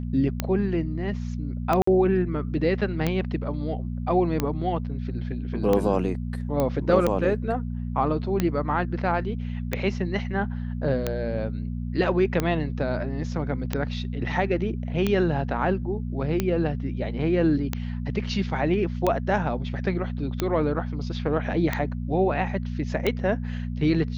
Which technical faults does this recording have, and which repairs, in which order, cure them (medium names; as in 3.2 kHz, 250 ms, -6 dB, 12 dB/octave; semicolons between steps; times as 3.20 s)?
hum 60 Hz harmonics 4 -30 dBFS
tick 45 rpm -10 dBFS
1.82–1.87 s: dropout 54 ms
6.60 s: pop -12 dBFS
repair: de-click; de-hum 60 Hz, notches 4; interpolate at 1.82 s, 54 ms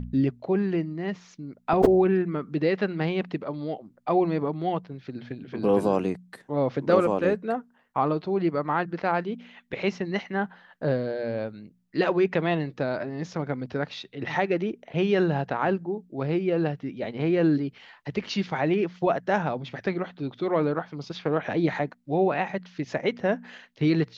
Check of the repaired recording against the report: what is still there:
nothing left